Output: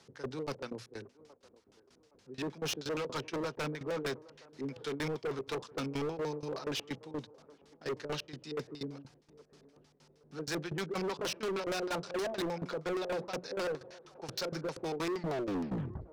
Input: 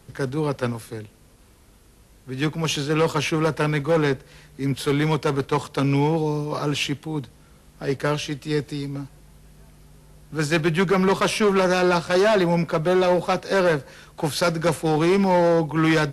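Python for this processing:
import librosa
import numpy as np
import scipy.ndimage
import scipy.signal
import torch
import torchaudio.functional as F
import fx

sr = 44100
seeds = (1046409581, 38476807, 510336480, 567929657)

p1 = fx.tape_stop_end(x, sr, length_s=1.04)
p2 = scipy.signal.sosfilt(scipy.signal.butter(2, 100.0, 'highpass', fs=sr, output='sos'), p1)
p3 = fx.low_shelf(p2, sr, hz=290.0, db=-8.0)
p4 = fx.hum_notches(p3, sr, base_hz=60, count=3)
p5 = 10.0 ** (-20.0 / 20.0) * (np.abs((p4 / 10.0 ** (-20.0 / 20.0) + 3.0) % 4.0 - 2.0) - 1.0)
p6 = p4 + (p5 * 10.0 ** (-6.5 / 20.0))
p7 = fx.filter_lfo_lowpass(p6, sr, shape='square', hz=6.4, low_hz=440.0, high_hz=5500.0, q=2.0)
p8 = fx.tremolo_shape(p7, sr, shape='saw_down', hz=4.2, depth_pct=90)
p9 = np.clip(p8, -10.0 ** (-23.5 / 20.0), 10.0 ** (-23.5 / 20.0))
p10 = p9 + fx.echo_wet_bandpass(p9, sr, ms=818, feedback_pct=31, hz=610.0, wet_db=-19.5, dry=0)
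y = p10 * 10.0 ** (-8.5 / 20.0)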